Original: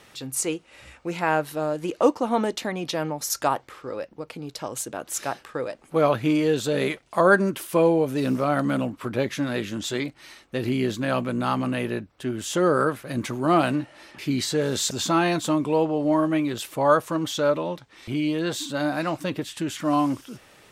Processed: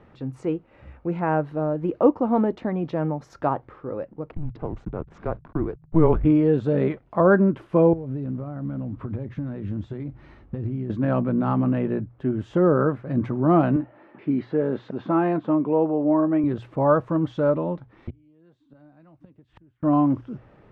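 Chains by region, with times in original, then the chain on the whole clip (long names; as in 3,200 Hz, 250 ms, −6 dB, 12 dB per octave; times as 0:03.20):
0:04.31–0:06.25: low-pass filter 4,700 Hz + slack as between gear wheels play −39 dBFS + frequency shifter −160 Hz
0:07.93–0:10.90: downward compressor 8 to 1, threshold −35 dBFS + parametric band 62 Hz +12.5 dB 2.8 octaves + log-companded quantiser 6 bits
0:13.76–0:16.44: band-pass filter 230–3,100 Hz + high-frequency loss of the air 67 metres
0:18.09–0:19.83: gate with flip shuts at −24 dBFS, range −34 dB + multiband upward and downward compressor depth 70%
whole clip: low-pass filter 1,300 Hz 12 dB per octave; low-shelf EQ 270 Hz +11.5 dB; mains-hum notches 60/120 Hz; level −1.5 dB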